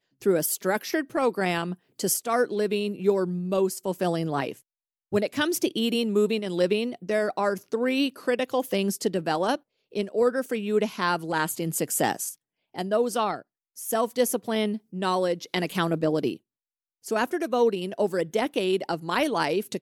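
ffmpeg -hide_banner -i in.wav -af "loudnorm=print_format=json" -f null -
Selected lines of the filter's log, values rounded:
"input_i" : "-26.4",
"input_tp" : "-9.0",
"input_lra" : "1.6",
"input_thresh" : "-36.6",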